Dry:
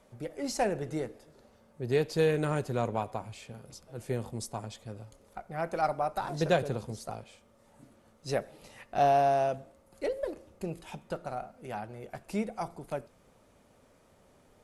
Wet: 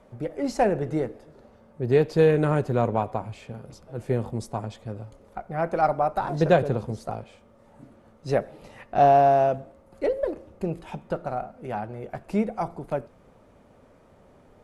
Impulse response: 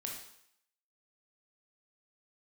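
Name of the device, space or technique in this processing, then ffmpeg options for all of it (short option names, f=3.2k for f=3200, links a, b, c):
through cloth: -af "highshelf=f=3k:g=-14,volume=8dB"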